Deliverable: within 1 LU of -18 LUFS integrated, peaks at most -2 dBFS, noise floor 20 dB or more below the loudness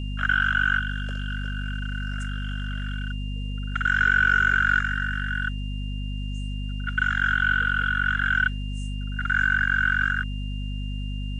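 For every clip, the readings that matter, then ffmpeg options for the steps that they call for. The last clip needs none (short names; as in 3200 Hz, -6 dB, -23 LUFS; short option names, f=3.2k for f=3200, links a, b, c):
hum 50 Hz; harmonics up to 250 Hz; hum level -27 dBFS; steady tone 2800 Hz; tone level -42 dBFS; loudness -24.5 LUFS; peak -9.0 dBFS; loudness target -18.0 LUFS
-> -af "bandreject=f=50:t=h:w=4,bandreject=f=100:t=h:w=4,bandreject=f=150:t=h:w=4,bandreject=f=200:t=h:w=4,bandreject=f=250:t=h:w=4"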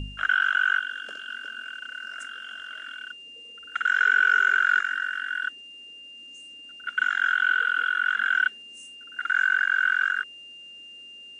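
hum none; steady tone 2800 Hz; tone level -42 dBFS
-> -af "bandreject=f=2.8k:w=30"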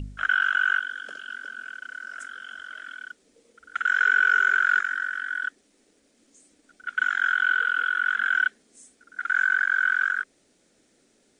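steady tone none; loudness -23.0 LUFS; peak -10.5 dBFS; loudness target -18.0 LUFS
-> -af "volume=5dB"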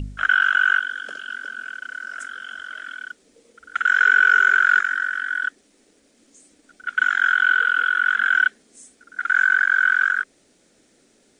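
loudness -18.0 LUFS; peak -5.5 dBFS; noise floor -60 dBFS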